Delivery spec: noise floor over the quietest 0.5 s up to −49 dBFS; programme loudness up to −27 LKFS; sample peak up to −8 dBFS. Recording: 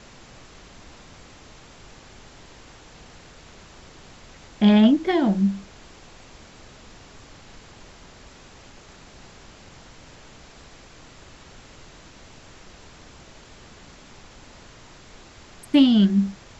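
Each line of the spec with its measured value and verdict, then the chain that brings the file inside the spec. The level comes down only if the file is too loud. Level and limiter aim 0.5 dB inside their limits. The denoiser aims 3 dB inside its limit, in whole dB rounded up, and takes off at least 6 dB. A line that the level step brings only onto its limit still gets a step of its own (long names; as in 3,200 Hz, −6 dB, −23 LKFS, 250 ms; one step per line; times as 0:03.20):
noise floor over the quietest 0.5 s −47 dBFS: out of spec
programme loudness −19.0 LKFS: out of spec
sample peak −6.0 dBFS: out of spec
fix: level −8.5 dB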